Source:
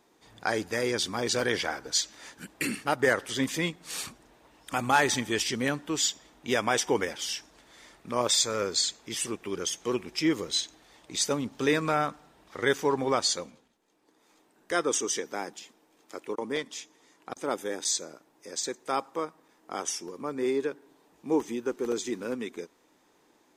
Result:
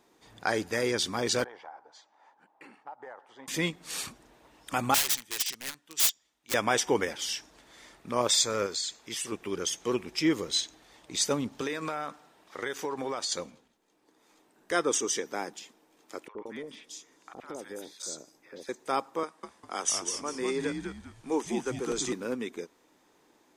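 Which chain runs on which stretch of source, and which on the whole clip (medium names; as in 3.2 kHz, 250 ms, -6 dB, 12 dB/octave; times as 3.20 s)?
1.44–3.48 s: band-pass filter 840 Hz, Q 5 + compression 4:1, threshold -41 dBFS
4.94–6.54 s: integer overflow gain 22 dB + tilt shelf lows -7 dB, about 1.4 kHz + upward expansion 2.5:1, over -33 dBFS
8.66–9.32 s: bass shelf 490 Hz -6 dB + compression 2.5:1, threshold -31 dBFS
11.61–13.32 s: high-pass 330 Hz 6 dB/octave + compression 10:1, threshold -28 dBFS
16.28–18.69 s: compression 2.5:1, threshold -38 dBFS + three bands offset in time mids, lows, highs 70/180 ms, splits 900/3300 Hz
19.23–22.13 s: Chebyshev band-pass 190–10000 Hz, order 3 + tilt EQ +2 dB/octave + frequency-shifting echo 200 ms, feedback 32%, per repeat -99 Hz, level -5 dB
whole clip: none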